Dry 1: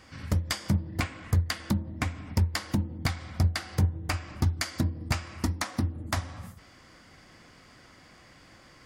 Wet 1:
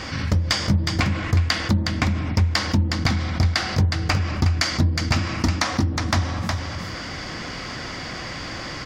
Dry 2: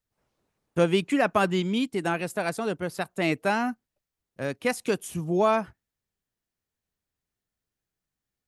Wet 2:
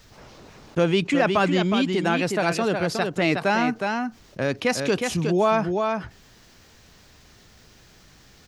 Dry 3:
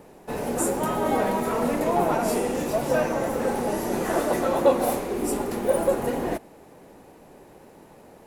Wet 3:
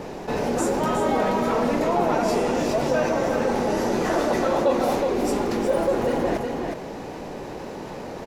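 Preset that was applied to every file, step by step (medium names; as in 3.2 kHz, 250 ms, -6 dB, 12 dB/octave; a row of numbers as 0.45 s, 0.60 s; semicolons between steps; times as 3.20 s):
resonant high shelf 7.5 kHz -10 dB, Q 1.5; delay 364 ms -8.5 dB; level flattener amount 50%; normalise loudness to -23 LUFS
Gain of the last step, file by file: +4.0 dB, +0.5 dB, -3.5 dB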